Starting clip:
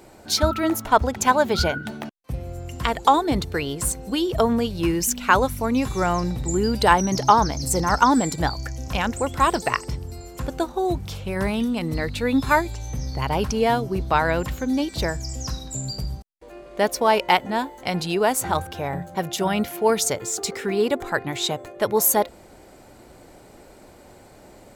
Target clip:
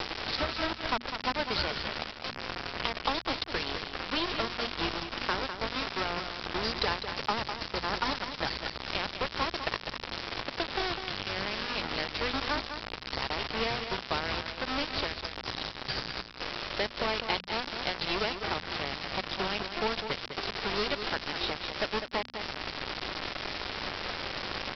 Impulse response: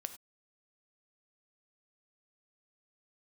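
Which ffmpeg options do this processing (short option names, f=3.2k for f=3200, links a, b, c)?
-filter_complex "[0:a]aeval=exprs='val(0)+0.5*0.119*sgn(val(0))':c=same,equalizer=f=160:w=0.39:g=-4.5,acrossover=split=370|1100|3700[a][b][c][d];[a]acompressor=threshold=-32dB:ratio=4[e];[b]acompressor=threshold=-33dB:ratio=4[f];[c]acompressor=threshold=-36dB:ratio=4[g];[d]acompressor=threshold=-29dB:ratio=4[h];[e][f][g][h]amix=inputs=4:normalize=0,aeval=exprs='(tanh(2.82*val(0)+0.35)-tanh(0.35))/2.82':c=same,aeval=exprs='val(0)+0.00562*(sin(2*PI*50*n/s)+sin(2*PI*2*50*n/s)/2+sin(2*PI*3*50*n/s)/3+sin(2*PI*4*50*n/s)/4+sin(2*PI*5*50*n/s)/5)':c=same,aresample=11025,aeval=exprs='val(0)*gte(abs(val(0)),0.0562)':c=same,aresample=44100,bandreject=f=60:t=h:w=6,bandreject=f=120:t=h:w=6,bandreject=f=180:t=h:w=6,bandreject=f=240:t=h:w=6,asplit=2[i][j];[j]aecho=0:1:202:0.376[k];[i][k]amix=inputs=2:normalize=0"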